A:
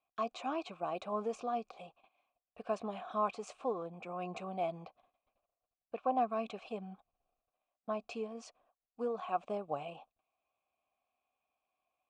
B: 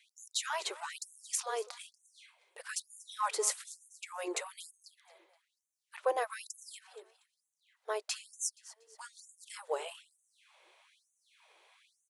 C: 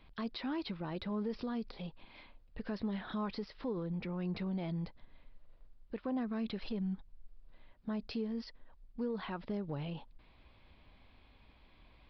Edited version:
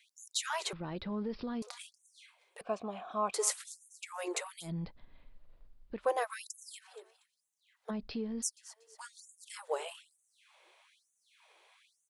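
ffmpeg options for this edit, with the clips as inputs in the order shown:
-filter_complex "[2:a]asplit=3[a][b][c];[1:a]asplit=5[d][e][f][g][h];[d]atrim=end=0.732[i];[a]atrim=start=0.728:end=1.622[j];[e]atrim=start=1.618:end=2.612[k];[0:a]atrim=start=2.608:end=3.342[l];[f]atrim=start=3.338:end=4.71[m];[b]atrim=start=4.61:end=6.08[n];[g]atrim=start=5.98:end=7.91[o];[c]atrim=start=7.89:end=8.44[p];[h]atrim=start=8.42[q];[i][j]acrossfade=d=0.004:c1=hsin:c2=hsin[r];[r][k]acrossfade=d=0.004:c1=hsin:c2=hsin[s];[s][l]acrossfade=d=0.004:c1=hsin:c2=hsin[t];[t][m]acrossfade=d=0.004:c1=hsin:c2=hsin[u];[u][n]acrossfade=d=0.1:c1=tri:c2=tri[v];[v][o]acrossfade=d=0.1:c1=tri:c2=tri[w];[w][p]acrossfade=d=0.02:c1=tri:c2=tri[x];[x][q]acrossfade=d=0.02:c1=tri:c2=tri"

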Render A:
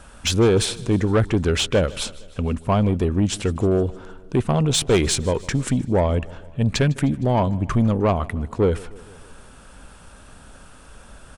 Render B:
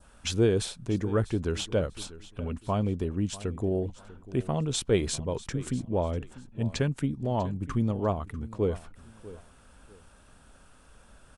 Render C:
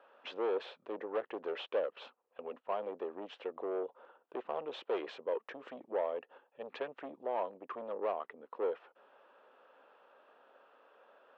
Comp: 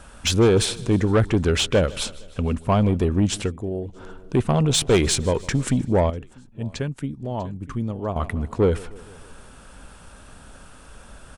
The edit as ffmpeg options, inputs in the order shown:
-filter_complex "[1:a]asplit=2[a][b];[0:a]asplit=3[c][d][e];[c]atrim=end=3.53[f];[a]atrim=start=3.43:end=4.02[g];[d]atrim=start=3.92:end=6.102[h];[b]atrim=start=6.098:end=8.162[i];[e]atrim=start=8.158[j];[f][g]acrossfade=d=0.1:c1=tri:c2=tri[k];[k][h]acrossfade=d=0.1:c1=tri:c2=tri[l];[l][i]acrossfade=d=0.004:c1=hsin:c2=hsin[m];[m][j]acrossfade=d=0.004:c1=hsin:c2=hsin"

